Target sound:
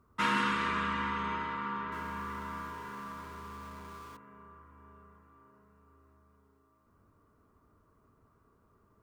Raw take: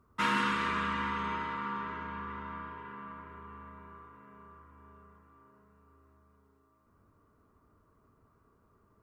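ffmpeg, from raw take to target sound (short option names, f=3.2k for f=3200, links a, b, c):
-filter_complex "[0:a]asettb=1/sr,asplit=3[a][b][c];[a]atrim=end=1.924[d];[b]atrim=start=1.92:end=4.17,asetpts=PTS-STARTPTS,afade=t=in:d=0.004:c=qsin,afade=t=out:st=2.246:d=0.004:c=qsin,aeval=exprs='val(0)+0.5*0.00376*sgn(val(0))':c=same[e];[c]atrim=start=4.166[f];[d][e]acrossfade=d=0.004:c1=hsin:c2=qsin[g];[g][f]acrossfade=d=0.004:c1=qsin:c2=hsin"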